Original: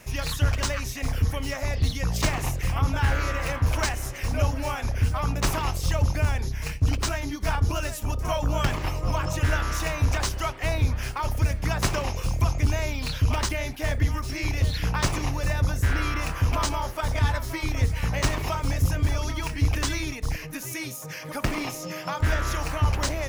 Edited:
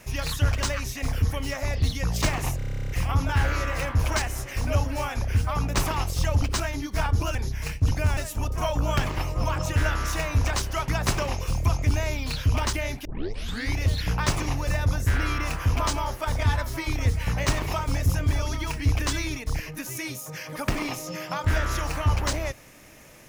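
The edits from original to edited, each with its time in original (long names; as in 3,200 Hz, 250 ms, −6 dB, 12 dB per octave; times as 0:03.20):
0:02.57: stutter 0.03 s, 12 plays
0:06.09–0:06.35: swap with 0:06.91–0:07.84
0:10.55–0:11.64: remove
0:13.81: tape start 0.70 s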